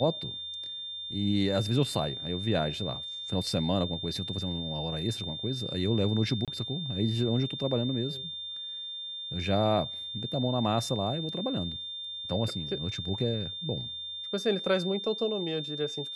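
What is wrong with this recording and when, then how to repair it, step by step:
whine 3.6 kHz -36 dBFS
6.45–6.48 s: dropout 27 ms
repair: band-stop 3.6 kHz, Q 30; interpolate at 6.45 s, 27 ms

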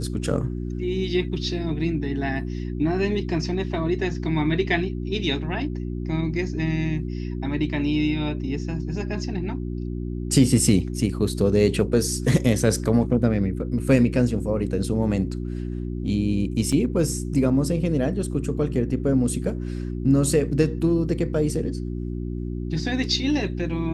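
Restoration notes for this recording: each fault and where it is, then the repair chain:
hum 60 Hz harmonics 6 -29 dBFS
16.72–16.73 s: dropout 5 ms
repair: de-hum 60 Hz, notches 6; interpolate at 16.72 s, 5 ms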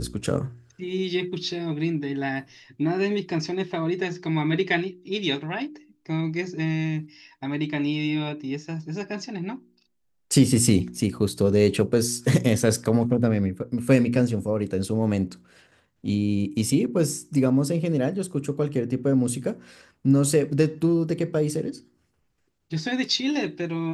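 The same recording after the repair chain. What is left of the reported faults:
nothing left

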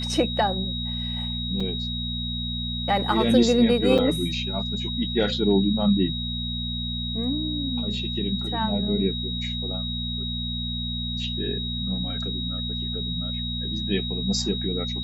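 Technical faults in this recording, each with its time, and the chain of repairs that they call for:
hum 60 Hz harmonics 4 -31 dBFS
whine 3.8 kHz -30 dBFS
1.60 s: dropout 4.6 ms
3.98–3.99 s: dropout 5.7 ms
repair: de-hum 60 Hz, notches 4; band-stop 3.8 kHz, Q 30; interpolate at 1.60 s, 4.6 ms; interpolate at 3.98 s, 5.7 ms

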